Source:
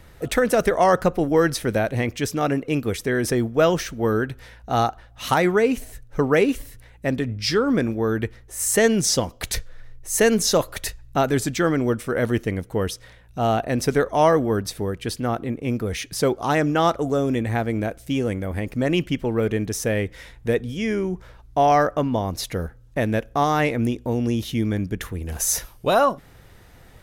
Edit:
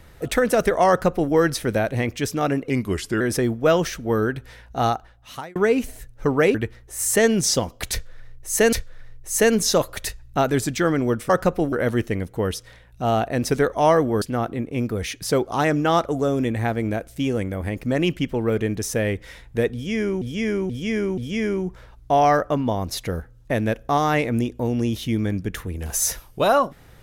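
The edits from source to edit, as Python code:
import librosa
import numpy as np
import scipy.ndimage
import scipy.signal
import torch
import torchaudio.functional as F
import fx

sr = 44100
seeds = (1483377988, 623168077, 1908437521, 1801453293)

y = fx.edit(x, sr, fx.duplicate(start_s=0.89, length_s=0.43, to_s=12.09),
    fx.speed_span(start_s=2.7, length_s=0.44, speed=0.87),
    fx.fade_out_span(start_s=4.75, length_s=0.74),
    fx.cut(start_s=6.48, length_s=1.67),
    fx.repeat(start_s=9.52, length_s=0.81, count=2),
    fx.cut(start_s=14.58, length_s=0.54),
    fx.repeat(start_s=20.64, length_s=0.48, count=4), tone=tone)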